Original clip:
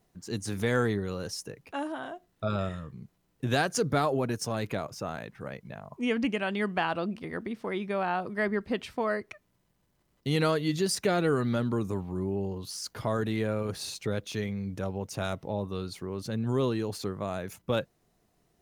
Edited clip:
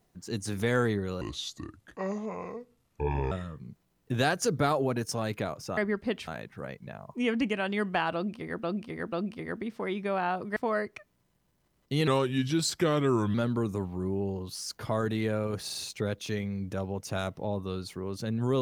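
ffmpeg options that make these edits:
-filter_complex "[0:a]asplit=12[s0][s1][s2][s3][s4][s5][s6][s7][s8][s9][s10][s11];[s0]atrim=end=1.214[s12];[s1]atrim=start=1.21:end=2.64,asetpts=PTS-STARTPTS,asetrate=29988,aresample=44100[s13];[s2]atrim=start=2.636:end=5.102[s14];[s3]atrim=start=8.408:end=8.912[s15];[s4]atrim=start=5.098:end=7.462[s16];[s5]atrim=start=6.968:end=7.462[s17];[s6]atrim=start=6.968:end=8.412[s18];[s7]atrim=start=8.908:end=10.424[s19];[s8]atrim=start=10.42:end=11.5,asetpts=PTS-STARTPTS,asetrate=37485,aresample=44100[s20];[s9]atrim=start=11.496:end=13.852[s21];[s10]atrim=start=13.798:end=13.852[s22];[s11]atrim=start=13.798[s23];[s12][s13]acrossfade=d=0.004:c1=hsin:c2=hsin[s24];[s24][s14]acrossfade=d=0.004:c1=hsin:c2=hsin[s25];[s25][s15]acrossfade=d=0.004:c1=hsin:c2=hsin[s26];[s26][s16]acrossfade=d=0.004:c1=hsin:c2=hsin[s27];[s27][s17]acrossfade=d=0.004:c1=hsin:c2=hsin[s28];[s28][s18]acrossfade=d=0.004:c1=hsin:c2=hsin[s29];[s29][s19]acrossfade=d=0.004:c1=hsin:c2=hsin[s30];[s30][s20]acrossfade=d=0.004:c1=hsin:c2=hsin[s31];[s31][s21]acrossfade=d=0.004:c1=hsin:c2=hsin[s32];[s32][s22]acrossfade=d=0.004:c1=hsin:c2=hsin[s33];[s33][s23]acrossfade=d=0.004:c1=hsin:c2=hsin"

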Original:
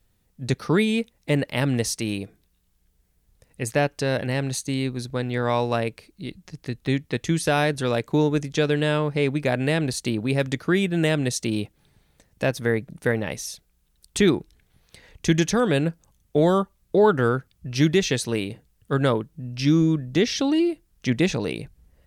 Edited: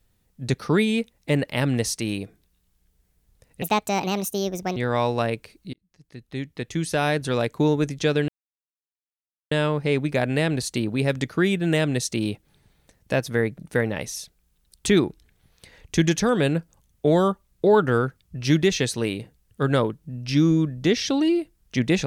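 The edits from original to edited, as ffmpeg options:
-filter_complex "[0:a]asplit=5[s0][s1][s2][s3][s4];[s0]atrim=end=3.624[s5];[s1]atrim=start=3.62:end=5.3,asetpts=PTS-STARTPTS,asetrate=64827,aresample=44100[s6];[s2]atrim=start=5.296:end=6.27,asetpts=PTS-STARTPTS,afade=t=out:st=0.97:d=0.004:c=hsin[s7];[s3]atrim=start=6.27:end=8.82,asetpts=PTS-STARTPTS,afade=t=in:d=1.56,afade=t=out:st=2.546:d=0.004:c=hsin,apad=pad_dur=1.23[s8];[s4]atrim=start=8.82,asetpts=PTS-STARTPTS,afade=t=in:d=0.004:c=hsin[s9];[s5][s6]acrossfade=d=0.004:c1=hsin:c2=hsin[s10];[s7][s8][s9]concat=n=3:v=0:a=1[s11];[s10][s11]acrossfade=d=0.004:c1=hsin:c2=hsin"

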